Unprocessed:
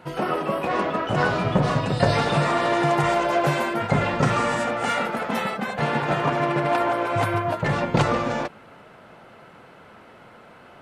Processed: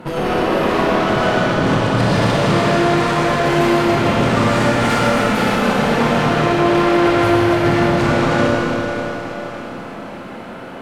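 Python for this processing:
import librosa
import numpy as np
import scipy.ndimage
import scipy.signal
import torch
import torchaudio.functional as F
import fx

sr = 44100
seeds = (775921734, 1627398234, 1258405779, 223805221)

p1 = fx.peak_eq(x, sr, hz=230.0, db=9.0, octaves=2.0)
p2 = fx.hum_notches(p1, sr, base_hz=50, count=3)
p3 = fx.over_compress(p2, sr, threshold_db=-22.0, ratio=-1.0)
p4 = p2 + (p3 * 10.0 ** (1.0 / 20.0))
p5 = fx.quant_dither(p4, sr, seeds[0], bits=12, dither='none')
p6 = fx.tube_stage(p5, sr, drive_db=19.0, bias=0.6)
p7 = p6 + fx.echo_split(p6, sr, split_hz=590.0, low_ms=409, high_ms=597, feedback_pct=52, wet_db=-13, dry=0)
p8 = fx.rev_schroeder(p7, sr, rt60_s=3.5, comb_ms=26, drr_db=-4.0)
y = p8 * 10.0 ** (1.0 / 20.0)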